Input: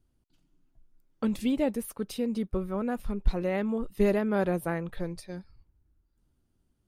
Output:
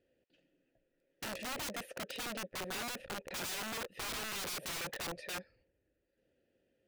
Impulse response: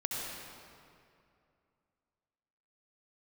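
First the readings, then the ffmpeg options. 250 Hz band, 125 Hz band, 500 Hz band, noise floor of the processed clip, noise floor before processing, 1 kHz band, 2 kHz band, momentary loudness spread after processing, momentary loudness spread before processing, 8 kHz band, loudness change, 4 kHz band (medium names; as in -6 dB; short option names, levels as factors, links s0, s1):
-20.0 dB, -17.5 dB, -16.0 dB, -81 dBFS, -74 dBFS, -5.5 dB, -0.5 dB, 5 LU, 10 LU, +6.0 dB, -10.0 dB, +7.0 dB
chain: -filter_complex "[0:a]aeval=exprs='(tanh(79.4*val(0)+0.1)-tanh(0.1))/79.4':c=same,asplit=3[s0][s1][s2];[s0]bandpass=f=530:t=q:w=8,volume=1[s3];[s1]bandpass=f=1840:t=q:w=8,volume=0.501[s4];[s2]bandpass=f=2480:t=q:w=8,volume=0.355[s5];[s3][s4][s5]amix=inputs=3:normalize=0,aeval=exprs='(mod(447*val(0)+1,2)-1)/447':c=same,volume=7.94"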